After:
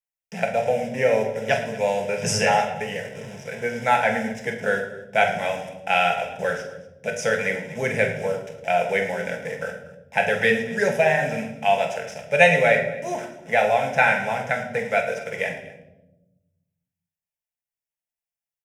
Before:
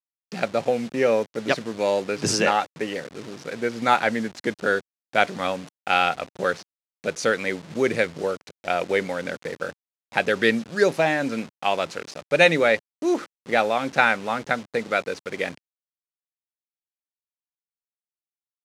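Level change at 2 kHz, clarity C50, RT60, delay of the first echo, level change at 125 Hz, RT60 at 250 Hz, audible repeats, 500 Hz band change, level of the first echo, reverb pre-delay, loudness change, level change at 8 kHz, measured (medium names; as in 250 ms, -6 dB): +2.0 dB, 7.5 dB, 1.0 s, 46 ms, +4.0 dB, 1.7 s, 3, +1.0 dB, -10.0 dB, 5 ms, +1.0 dB, +0.5 dB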